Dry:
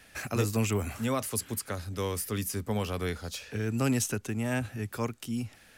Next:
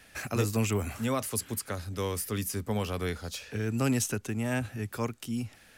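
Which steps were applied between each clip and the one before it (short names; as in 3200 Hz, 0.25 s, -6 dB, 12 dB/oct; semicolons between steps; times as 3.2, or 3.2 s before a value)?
nothing audible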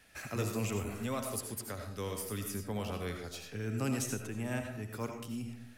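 reverb RT60 0.60 s, pre-delay 45 ms, DRR 4 dB; gain -7 dB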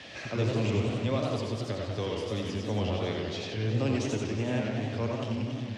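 zero-crossing step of -42 dBFS; speaker cabinet 100–5300 Hz, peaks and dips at 110 Hz +7 dB, 330 Hz +4 dB, 560 Hz +6 dB, 1400 Hz -8 dB, 3300 Hz +5 dB; warbling echo 92 ms, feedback 74%, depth 218 cents, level -5.5 dB; gain +1.5 dB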